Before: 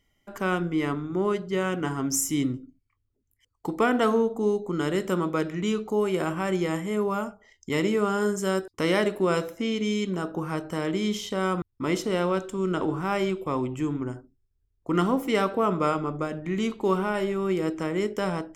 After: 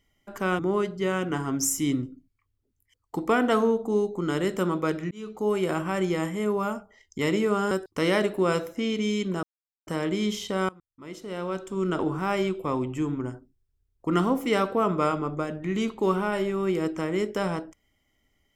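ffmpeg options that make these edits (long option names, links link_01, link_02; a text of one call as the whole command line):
ffmpeg -i in.wav -filter_complex "[0:a]asplit=7[link_01][link_02][link_03][link_04][link_05][link_06][link_07];[link_01]atrim=end=0.592[link_08];[link_02]atrim=start=1.098:end=5.62,asetpts=PTS-STARTPTS,afade=type=out:start_time=4.518:duration=0.004:curve=hsin[link_09];[link_03]atrim=start=5.62:end=8.222,asetpts=PTS-STARTPTS,afade=type=in:duration=0.4[link_10];[link_04]atrim=start=8.528:end=10.25,asetpts=PTS-STARTPTS,afade=type=out:start_time=1.718:duration=0.004:curve=hsin[link_11];[link_05]atrim=start=10.25:end=10.69,asetpts=PTS-STARTPTS,volume=0[link_12];[link_06]atrim=start=10.69:end=11.51,asetpts=PTS-STARTPTS,afade=type=in:duration=0.004:curve=hsin,afade=type=out:start_time=0.816:duration=0.004:curve=hsin:silence=0.0707946[link_13];[link_07]atrim=start=11.51,asetpts=PTS-STARTPTS,afade=type=in:duration=1.14:curve=qua:silence=0.0707946[link_14];[link_09][link_10]concat=n=2:v=0:a=1[link_15];[link_08][link_15]acrossfade=duration=0.004:curve1=hsin:curve2=hsin[link_16];[link_11][link_12][link_13][link_14]concat=n=4:v=0:a=1[link_17];[link_16][link_17]acrossfade=duration=0.004:curve1=hsin:curve2=hsin" out.wav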